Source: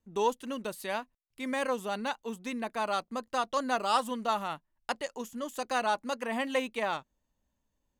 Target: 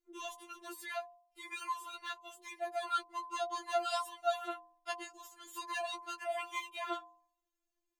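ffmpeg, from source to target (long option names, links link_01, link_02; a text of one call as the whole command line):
ffmpeg -i in.wav -af "lowshelf=frequency=170:width_type=q:width=1.5:gain=-11,bandreject=frequency=46.66:width_type=h:width=4,bandreject=frequency=93.32:width_type=h:width=4,bandreject=frequency=139.98:width_type=h:width=4,bandreject=frequency=186.64:width_type=h:width=4,bandreject=frequency=233.3:width_type=h:width=4,bandreject=frequency=279.96:width_type=h:width=4,bandreject=frequency=326.62:width_type=h:width=4,bandreject=frequency=373.28:width_type=h:width=4,bandreject=frequency=419.94:width_type=h:width=4,bandreject=frequency=466.6:width_type=h:width=4,bandreject=frequency=513.26:width_type=h:width=4,bandreject=frequency=559.92:width_type=h:width=4,bandreject=frequency=606.58:width_type=h:width=4,bandreject=frequency=653.24:width_type=h:width=4,bandreject=frequency=699.9:width_type=h:width=4,bandreject=frequency=746.56:width_type=h:width=4,bandreject=frequency=793.22:width_type=h:width=4,bandreject=frequency=839.88:width_type=h:width=4,bandreject=frequency=886.54:width_type=h:width=4,bandreject=frequency=933.2:width_type=h:width=4,bandreject=frequency=979.86:width_type=h:width=4,bandreject=frequency=1026.52:width_type=h:width=4,bandreject=frequency=1073.18:width_type=h:width=4,bandreject=frequency=1119.84:width_type=h:width=4,bandreject=frequency=1166.5:width_type=h:width=4,afftfilt=real='re*4*eq(mod(b,16),0)':imag='im*4*eq(mod(b,16),0)':win_size=2048:overlap=0.75,volume=-2.5dB" out.wav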